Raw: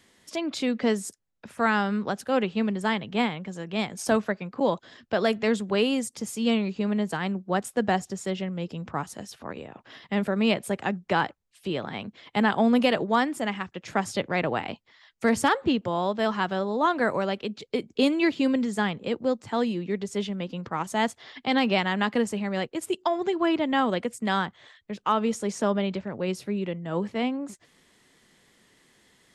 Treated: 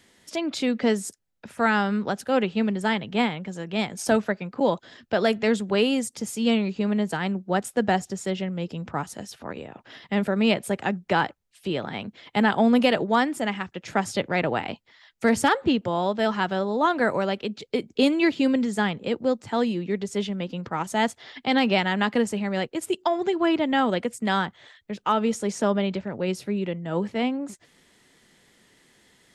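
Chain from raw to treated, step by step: band-stop 1.1 kHz, Q 13; trim +2 dB

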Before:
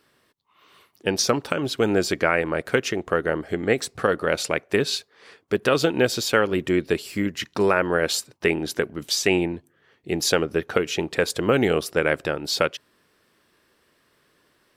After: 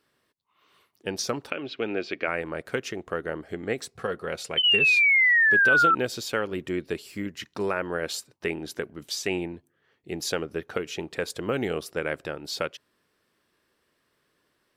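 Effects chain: 4.57–5.95 s: painted sound fall 1.3–3.1 kHz -11 dBFS; 1.50–2.28 s: cabinet simulation 170–4300 Hz, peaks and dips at 170 Hz -7 dB, 960 Hz -5 dB, 2.5 kHz +9 dB; 3.90–4.97 s: comb of notches 300 Hz; trim -8 dB

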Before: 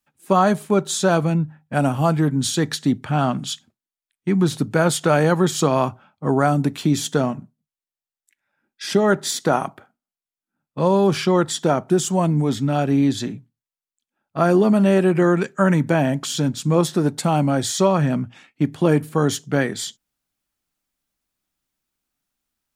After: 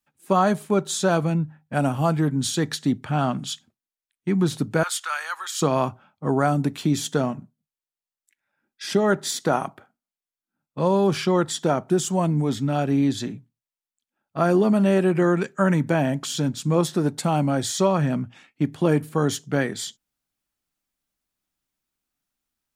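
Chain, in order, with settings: 4.83–5.62 s: Chebyshev high-pass 1.2 kHz, order 3; trim -3 dB

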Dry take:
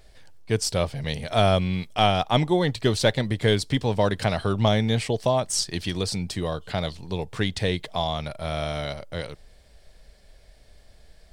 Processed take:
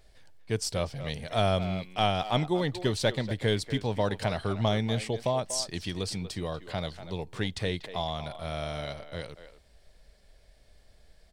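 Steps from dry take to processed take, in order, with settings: speakerphone echo 240 ms, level -11 dB; trim -6 dB

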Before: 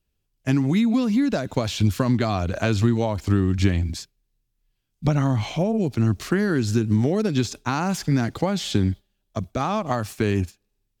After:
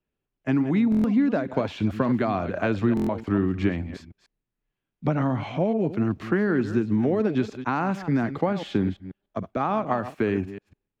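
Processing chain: chunks repeated in reverse 147 ms, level -12 dB; three-band isolator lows -13 dB, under 160 Hz, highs -22 dB, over 2.6 kHz; buffer glitch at 0.90/2.95 s, samples 1024, times 5

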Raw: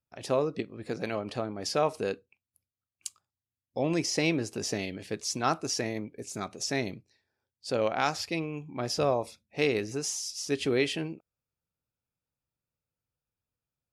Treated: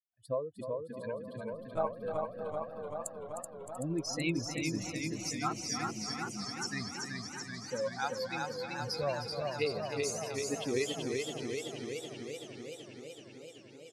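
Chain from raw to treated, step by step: expander on every frequency bin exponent 3; in parallel at 0 dB: compression, threshold -38 dBFS, peak gain reduction 12 dB; 1.53–1.95 s: on the sum: monotone LPC vocoder at 8 kHz 160 Hz; on a send: feedback delay 308 ms, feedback 60%, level -9.5 dB; on the sum: modulated delay 382 ms, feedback 75%, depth 78 cents, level -3.5 dB; trim -4.5 dB

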